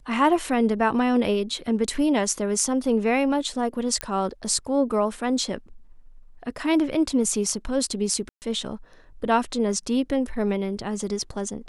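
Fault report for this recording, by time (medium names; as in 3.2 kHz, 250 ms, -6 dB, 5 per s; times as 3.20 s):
4.01 s: pop -9 dBFS
8.29–8.42 s: dropout 129 ms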